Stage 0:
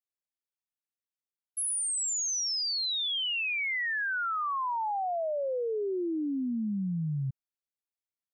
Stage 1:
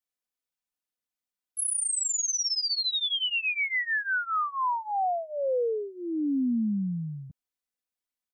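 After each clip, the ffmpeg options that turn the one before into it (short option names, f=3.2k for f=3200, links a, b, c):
-af "aecho=1:1:4:0.86"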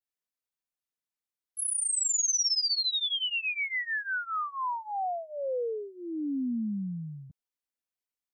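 -af "adynamicequalizer=threshold=0.00794:dfrequency=6000:dqfactor=0.81:tfrequency=6000:tqfactor=0.81:attack=5:release=100:ratio=0.375:range=3:mode=boostabove:tftype=bell,volume=-4.5dB"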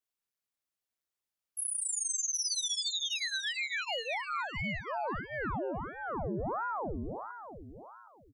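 -af "acompressor=threshold=-38dB:ratio=2,aecho=1:1:768|1536|2304:0.266|0.0585|0.0129,aeval=exprs='val(0)*sin(2*PI*640*n/s+640*0.9/1.5*sin(2*PI*1.5*n/s))':c=same,volume=4dB"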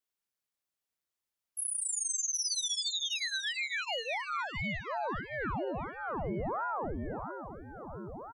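-filter_complex "[0:a]asplit=2[a][b];[b]adelay=1691,volume=-8dB,highshelf=f=4k:g=-38[c];[a][c]amix=inputs=2:normalize=0"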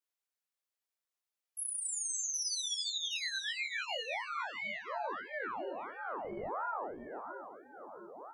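-filter_complex "[0:a]acrossover=split=310|450|1600[a][b][c][d];[a]acrusher=bits=4:mix=0:aa=0.5[e];[e][b][c][d]amix=inputs=4:normalize=0,flanger=delay=19.5:depth=5.8:speed=0.78"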